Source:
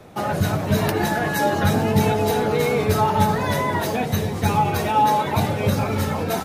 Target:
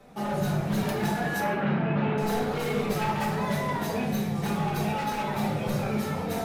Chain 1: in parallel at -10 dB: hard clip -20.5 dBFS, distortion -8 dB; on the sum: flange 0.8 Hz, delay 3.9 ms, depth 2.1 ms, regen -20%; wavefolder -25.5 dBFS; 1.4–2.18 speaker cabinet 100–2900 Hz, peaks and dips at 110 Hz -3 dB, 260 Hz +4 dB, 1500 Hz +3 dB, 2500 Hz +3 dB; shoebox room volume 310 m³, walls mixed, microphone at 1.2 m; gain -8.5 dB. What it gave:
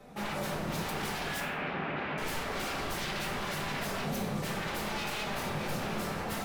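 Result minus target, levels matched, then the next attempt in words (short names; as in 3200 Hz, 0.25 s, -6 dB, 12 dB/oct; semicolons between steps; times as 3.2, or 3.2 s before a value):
wavefolder: distortion +21 dB
in parallel at -10 dB: hard clip -20.5 dBFS, distortion -8 dB; on the sum: flange 0.8 Hz, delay 3.9 ms, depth 2.1 ms, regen -20%; wavefolder -17.5 dBFS; 1.4–2.18 speaker cabinet 100–2900 Hz, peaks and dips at 110 Hz -3 dB, 260 Hz +4 dB, 1500 Hz +3 dB, 2500 Hz +3 dB; shoebox room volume 310 m³, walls mixed, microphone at 1.2 m; gain -8.5 dB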